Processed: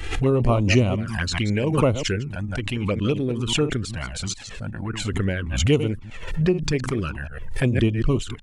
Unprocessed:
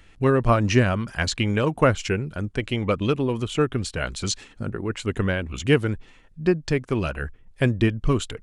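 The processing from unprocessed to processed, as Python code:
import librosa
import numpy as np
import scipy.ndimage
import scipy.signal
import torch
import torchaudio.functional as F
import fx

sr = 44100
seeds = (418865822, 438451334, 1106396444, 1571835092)

y = fx.reverse_delay(x, sr, ms=107, wet_db=-11.0)
y = fx.env_flanger(y, sr, rest_ms=2.6, full_db=-16.0)
y = fx.pre_swell(y, sr, db_per_s=54.0)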